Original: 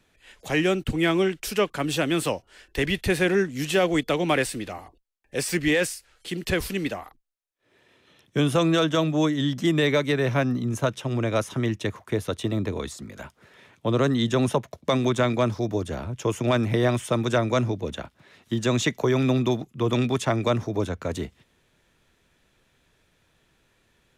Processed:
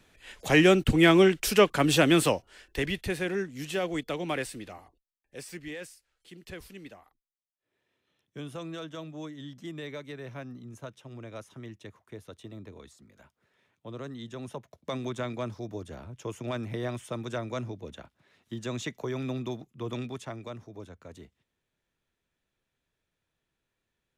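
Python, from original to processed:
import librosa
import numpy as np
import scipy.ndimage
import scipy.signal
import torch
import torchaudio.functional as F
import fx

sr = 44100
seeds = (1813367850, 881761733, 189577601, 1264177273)

y = fx.gain(x, sr, db=fx.line((2.12, 3.0), (3.18, -9.0), (4.73, -9.0), (5.69, -18.0), (14.41, -18.0), (14.87, -11.5), (19.93, -11.5), (20.52, -18.0)))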